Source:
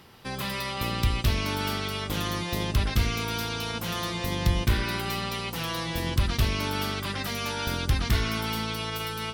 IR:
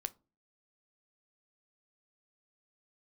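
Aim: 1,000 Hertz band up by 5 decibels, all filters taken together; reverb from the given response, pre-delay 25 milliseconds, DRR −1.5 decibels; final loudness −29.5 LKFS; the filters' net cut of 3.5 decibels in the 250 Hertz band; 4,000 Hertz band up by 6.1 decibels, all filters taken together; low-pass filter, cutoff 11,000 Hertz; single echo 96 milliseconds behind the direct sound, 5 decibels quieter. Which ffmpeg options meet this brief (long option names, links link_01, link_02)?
-filter_complex "[0:a]lowpass=11000,equalizer=frequency=250:width_type=o:gain=-5.5,equalizer=frequency=1000:width_type=o:gain=6,equalizer=frequency=4000:width_type=o:gain=7.5,aecho=1:1:96:0.562,asplit=2[link_01][link_02];[1:a]atrim=start_sample=2205,adelay=25[link_03];[link_02][link_03]afir=irnorm=-1:irlink=0,volume=3dB[link_04];[link_01][link_04]amix=inputs=2:normalize=0,volume=-8.5dB"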